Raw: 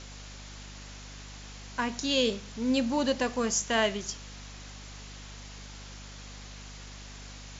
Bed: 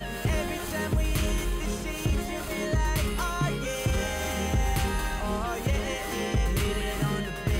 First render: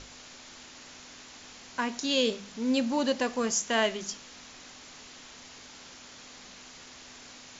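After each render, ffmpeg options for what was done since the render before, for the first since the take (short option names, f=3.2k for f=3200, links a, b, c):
-af "bandreject=f=50:t=h:w=6,bandreject=f=100:t=h:w=6,bandreject=f=150:t=h:w=6,bandreject=f=200:t=h:w=6"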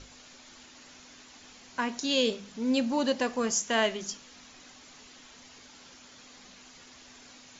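-af "afftdn=nr=6:nf=-49"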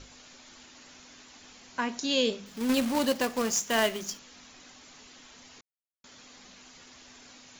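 -filter_complex "[0:a]asettb=1/sr,asplit=3[a][b][c];[a]atrim=end=2.464[d];[b]atrim=start=2.46:end=4.19,asetpts=PTS-STARTPTS,afade=t=in:d=0.004:c=qsin,afade=t=out:st=1.726:d=0.004:c=qsin,acrusher=bits=2:mode=log:mix=0:aa=0.000001[e];[c]atrim=start=4.186[f];[d][e]acrossfade=d=0.004:c1=hsin:c2=qsin[g];[g][f]acrossfade=d=0.004:c1=qsin:c2=hsin,asplit=3[h][i][j];[h]atrim=end=5.61,asetpts=PTS-STARTPTS,afade=t=out:st=5.606:d=0.004:c=hsin[k];[i]atrim=start=5.61:end=6.04,asetpts=PTS-STARTPTS,volume=0[l];[j]atrim=start=6.04,asetpts=PTS-STARTPTS,afade=t=in:d=0.004:c=hsin[m];[k][l][m]concat=n=3:v=0:a=1"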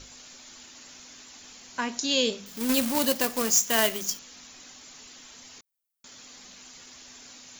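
-af "aemphasis=mode=production:type=50kf"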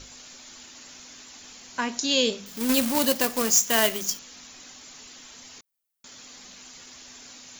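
-af "volume=2dB,alimiter=limit=-3dB:level=0:latency=1"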